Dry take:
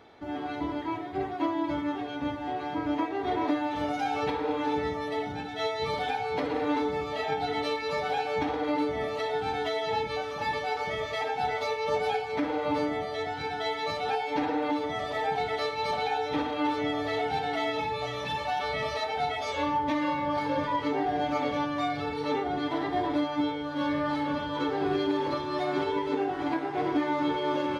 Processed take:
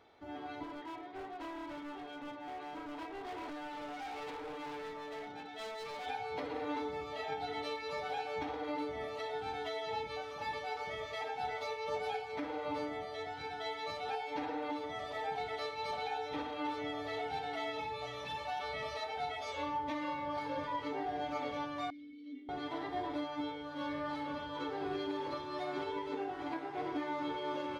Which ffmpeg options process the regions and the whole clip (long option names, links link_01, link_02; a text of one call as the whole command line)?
ffmpeg -i in.wav -filter_complex "[0:a]asettb=1/sr,asplit=3[link_01][link_02][link_03];[link_01]atrim=end=0.634[link_04];[link_02]atrim=start=0.63:end=6.06,asetpts=PTS-STARTPTS,afade=type=in:duration=0.004:curve=qsin,afade=type=out:start_time=5.426:duration=0.004:curve=qsin,highpass=190,lowpass=5500,asoftclip=type=hard:threshold=-31.5dB[link_05];[link_03]atrim=start=6.056[link_06];[link_04][link_05]acrossfade=duration=0.004:curve1=hsin:curve2=qsin[link_07];[link_07][link_06]acrossfade=duration=0.004:curve1=qsin:curve2=hsin,asettb=1/sr,asplit=3[link_08][link_09][link_10];[link_08]atrim=end=21.904[link_11];[link_09]atrim=start=21.9:end=22.49,asetpts=PTS-STARTPTS,afade=type=in:duration=0.004:curve=qsin,afade=type=out:start_time=0.586:duration=0.004:curve=qsin,asplit=3[link_12][link_13][link_14];[link_12]bandpass=frequency=270:width_type=q:width=8,volume=0dB[link_15];[link_13]bandpass=frequency=2290:width_type=q:width=8,volume=-6dB[link_16];[link_14]bandpass=frequency=3010:width_type=q:width=8,volume=-9dB[link_17];[link_15][link_16][link_17]amix=inputs=3:normalize=0,equalizer=frequency=1400:width=0.67:gain=-15,aecho=1:1:3.6:0.83,atrim=end_sample=26019[link_18];[link_10]atrim=start=22.486[link_19];[link_11][link_18]acrossfade=duration=0.004:curve1=hsin:curve2=qsin[link_20];[link_20][link_19]acrossfade=duration=0.004:curve1=qsin:curve2=hsin,equalizer=frequency=180:width=0.79:gain=-5,bandreject=frequency=1700:width=22,volume=-8.5dB" out.wav